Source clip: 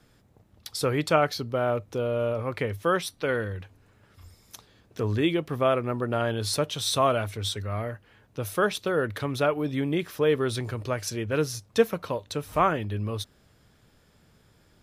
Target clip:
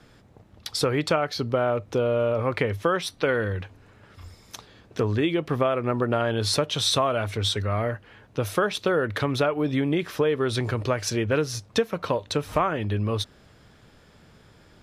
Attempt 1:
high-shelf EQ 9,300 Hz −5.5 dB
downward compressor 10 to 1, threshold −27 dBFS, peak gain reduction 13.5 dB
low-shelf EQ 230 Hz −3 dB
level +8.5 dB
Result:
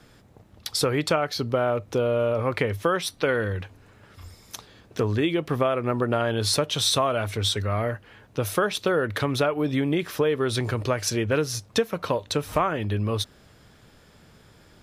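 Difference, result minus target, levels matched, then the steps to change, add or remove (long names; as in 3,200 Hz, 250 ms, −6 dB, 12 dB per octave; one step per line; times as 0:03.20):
8,000 Hz band +2.5 dB
change: high-shelf EQ 9,300 Hz −15 dB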